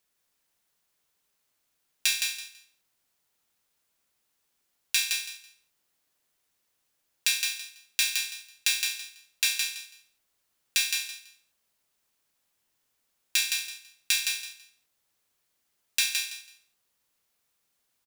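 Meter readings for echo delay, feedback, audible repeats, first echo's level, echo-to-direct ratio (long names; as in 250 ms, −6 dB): 165 ms, 21%, 3, −4.5 dB, −4.5 dB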